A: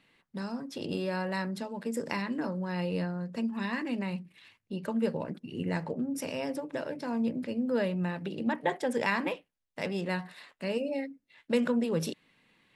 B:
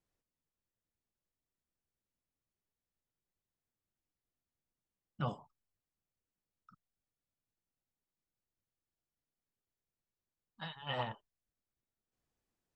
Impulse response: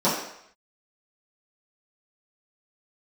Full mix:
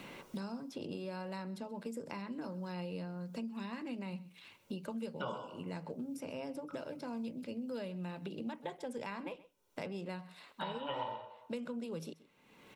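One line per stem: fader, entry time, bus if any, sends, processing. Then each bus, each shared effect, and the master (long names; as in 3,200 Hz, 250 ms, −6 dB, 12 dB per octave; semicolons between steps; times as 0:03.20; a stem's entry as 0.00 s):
−11.5 dB, 0.00 s, no send, echo send −22 dB, no processing
+2.0 dB, 0.00 s, send −16.5 dB, echo send −9.5 dB, high-pass filter 320 Hz 6 dB per octave; comb filter 2.1 ms, depth 49%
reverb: on, RT60 0.70 s, pre-delay 3 ms
echo: single-tap delay 128 ms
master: parametric band 1,800 Hz −10.5 dB 0.23 octaves; multiband upward and downward compressor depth 100%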